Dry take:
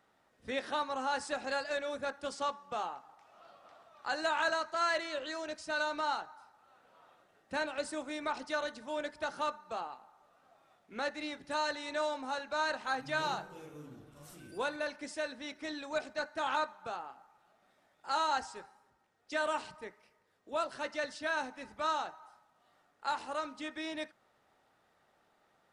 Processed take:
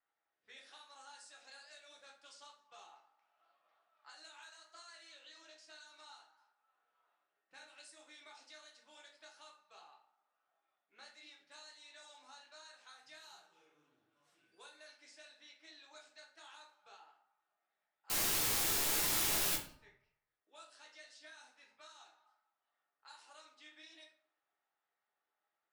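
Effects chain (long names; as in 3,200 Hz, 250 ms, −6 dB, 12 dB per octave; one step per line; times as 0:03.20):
low-pass that shuts in the quiet parts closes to 1,900 Hz, open at −29.5 dBFS
first difference
downward compressor 6 to 1, threshold −52 dBFS, peak gain reduction 12.5 dB
flanger 1.5 Hz, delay 1 ms, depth 8.7 ms, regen +68%
0:18.10–0:19.56: bit-depth reduction 6 bits, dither triangular
pitch vibrato 1.3 Hz 30 cents
rectangular room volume 45 cubic metres, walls mixed, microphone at 0.68 metres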